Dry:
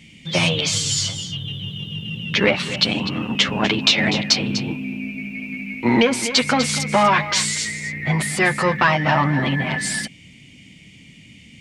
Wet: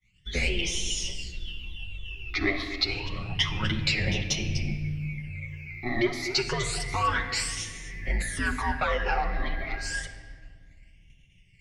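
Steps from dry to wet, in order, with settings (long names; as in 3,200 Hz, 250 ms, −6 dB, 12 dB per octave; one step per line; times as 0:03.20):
frequency shifter −110 Hz
all-pass phaser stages 12, 0.29 Hz, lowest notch 150–1,500 Hz
downward expander −37 dBFS
rectangular room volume 3,000 cubic metres, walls mixed, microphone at 1 metre
level −7.5 dB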